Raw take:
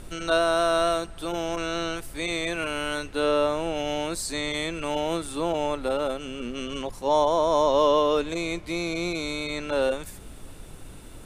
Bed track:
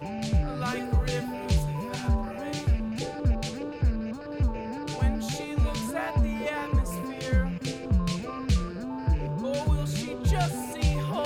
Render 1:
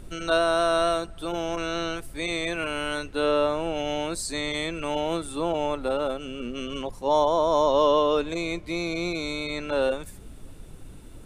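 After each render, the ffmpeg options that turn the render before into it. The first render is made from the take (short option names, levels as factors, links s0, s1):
-af "afftdn=nr=6:nf=-43"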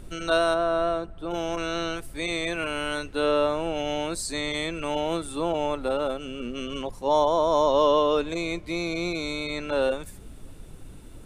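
-filter_complex "[0:a]asplit=3[s0][s1][s2];[s0]afade=t=out:st=0.53:d=0.02[s3];[s1]lowpass=f=1100:p=1,afade=t=in:st=0.53:d=0.02,afade=t=out:st=1.3:d=0.02[s4];[s2]afade=t=in:st=1.3:d=0.02[s5];[s3][s4][s5]amix=inputs=3:normalize=0"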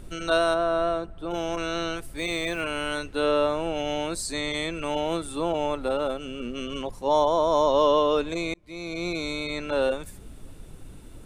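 -filter_complex "[0:a]asplit=3[s0][s1][s2];[s0]afade=t=out:st=2.17:d=0.02[s3];[s1]acrusher=bits=7:mix=0:aa=0.5,afade=t=in:st=2.17:d=0.02,afade=t=out:st=2.61:d=0.02[s4];[s2]afade=t=in:st=2.61:d=0.02[s5];[s3][s4][s5]amix=inputs=3:normalize=0,asplit=2[s6][s7];[s6]atrim=end=8.54,asetpts=PTS-STARTPTS,afade=t=out:st=8.536:d=0.004:c=hsin[s8];[s7]atrim=start=8.54,asetpts=PTS-STARTPTS,afade=t=in:d=0.59[s9];[s8][s9]concat=n=2:v=0:a=1"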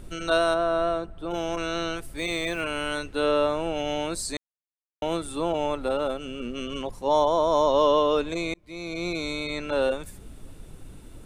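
-filter_complex "[0:a]asplit=3[s0][s1][s2];[s0]atrim=end=4.37,asetpts=PTS-STARTPTS,afade=t=out:st=4.366:d=0.004:c=hsin[s3];[s1]atrim=start=4.37:end=5.02,asetpts=PTS-STARTPTS,volume=0[s4];[s2]atrim=start=5.02,asetpts=PTS-STARTPTS,afade=t=in:d=0.004:c=hsin[s5];[s3][s4][s5]concat=n=3:v=0:a=1"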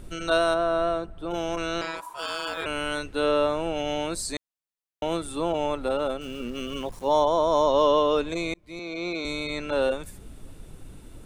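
-filter_complex "[0:a]asettb=1/sr,asplit=3[s0][s1][s2];[s0]atrim=end=1.814[s3];[s1]atrim=start=1.81:end=2.66,asetpts=PTS-STARTPTS,afade=t=in:d=0.004:c=qsin,afade=t=out:st=0.846:d=0.004:c=qsin,aeval=exprs='val(0)*sin(2*PI*980*n/s)':c=same[s4];[s2]atrim=start=2.656[s5];[s3][s4]acrossfade=d=0.004:c1=hsin:c2=qsin[s6];[s6][s5]acrossfade=d=0.004:c1=qsin:c2=hsin,asettb=1/sr,asplit=3[s7][s8][s9];[s7]atrim=end=6.214[s10];[s8]atrim=start=6.21:end=7.2,asetpts=PTS-STARTPTS,afade=t=in:d=0.004:c=qsin,afade=t=out:st=0.986:d=0.004:c=qsin,aeval=exprs='val(0)*gte(abs(val(0)),0.00562)':c=same[s11];[s9]atrim=start=7.196[s12];[s10][s11]acrossfade=d=0.004:c1=hsin:c2=qsin[s13];[s13][s12]acrossfade=d=0.004:c1=qsin:c2=hsin,asettb=1/sr,asplit=3[s14][s15][s16];[s14]atrim=end=8.794[s17];[s15]atrim=start=8.79:end=9.25,asetpts=PTS-STARTPTS,afade=t=in:d=0.004:c=qsin,afade=t=out:st=0.456:d=0.004:c=qsin,acrossover=split=190 5700:gain=0.178 1 0.158[s18][s19][s20];[s18][s19][s20]amix=inputs=3:normalize=0[s21];[s16]atrim=start=9.246[s22];[s17][s21]acrossfade=d=0.004:c1=hsin:c2=qsin[s23];[s23][s22]acrossfade=d=0.004:c1=qsin:c2=hsin"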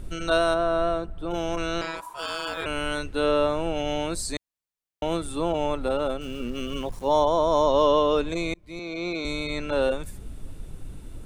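-af "lowshelf=f=140:g=7"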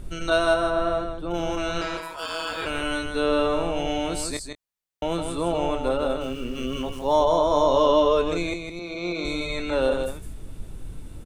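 -filter_complex "[0:a]asplit=2[s0][s1];[s1]adelay=23,volume=0.282[s2];[s0][s2]amix=inputs=2:normalize=0,asplit=2[s3][s4];[s4]aecho=0:1:159:0.501[s5];[s3][s5]amix=inputs=2:normalize=0"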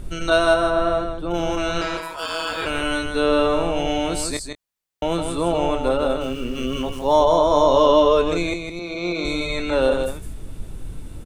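-af "volume=1.58"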